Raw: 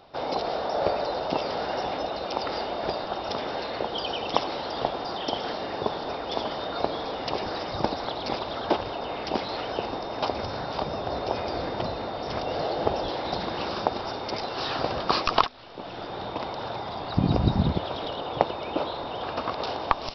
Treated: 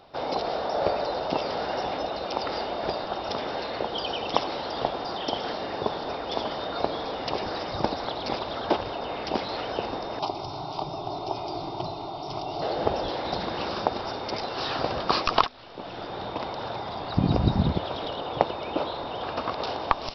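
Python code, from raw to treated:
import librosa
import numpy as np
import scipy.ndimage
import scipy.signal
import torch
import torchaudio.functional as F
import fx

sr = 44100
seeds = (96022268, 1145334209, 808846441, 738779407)

y = fx.fixed_phaser(x, sr, hz=340.0, stages=8, at=(10.19, 12.62))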